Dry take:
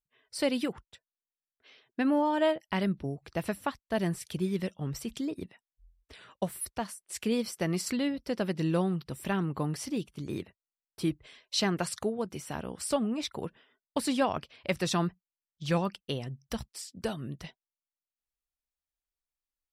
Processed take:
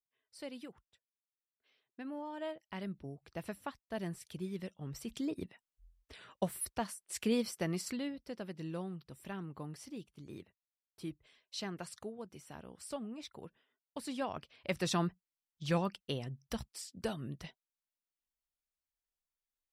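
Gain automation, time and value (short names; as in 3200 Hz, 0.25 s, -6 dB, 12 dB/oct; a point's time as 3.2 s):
2.13 s -17 dB
3.22 s -10 dB
4.8 s -10 dB
5.31 s -2.5 dB
7.38 s -2.5 dB
8.44 s -13 dB
13.97 s -13 dB
14.86 s -4 dB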